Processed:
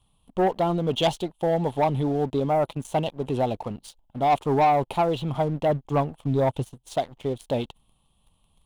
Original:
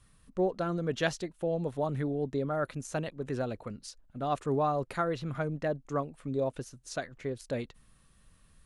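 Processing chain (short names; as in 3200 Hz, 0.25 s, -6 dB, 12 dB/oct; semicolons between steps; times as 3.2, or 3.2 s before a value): EQ curve 540 Hz 0 dB, 860 Hz +12 dB, 1700 Hz -20 dB, 3200 Hz +10 dB, 5100 Hz -11 dB, 12000 Hz +2 dB; 2.4–2.85 gate -38 dBFS, range -10 dB; 5.69–6.74 dynamic EQ 110 Hz, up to +8 dB, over -51 dBFS, Q 1.1; sample leveller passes 2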